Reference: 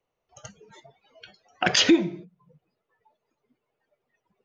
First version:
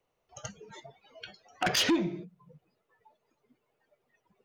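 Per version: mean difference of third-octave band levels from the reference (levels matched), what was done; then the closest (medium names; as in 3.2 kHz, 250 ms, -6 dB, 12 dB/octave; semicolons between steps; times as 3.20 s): 5.0 dB: in parallel at +1.5 dB: compression, threshold -31 dBFS, peak gain reduction 16.5 dB; on the sum: saturation -16.5 dBFS, distortion -10 dB; trim -4.5 dB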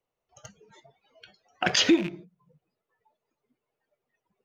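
1.5 dB: rattle on loud lows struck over -32 dBFS, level -23 dBFS; in parallel at -11 dB: crossover distortion -38 dBFS; on the sum: trim -4.5 dB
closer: second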